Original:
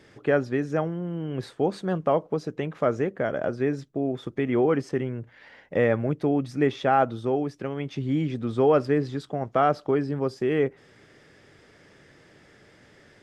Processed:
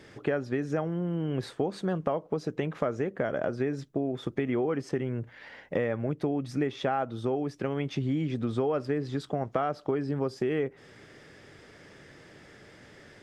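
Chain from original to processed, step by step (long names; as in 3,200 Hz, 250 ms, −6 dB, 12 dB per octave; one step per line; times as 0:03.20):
downward compressor, threshold −28 dBFS, peak gain reduction 12 dB
level +2.5 dB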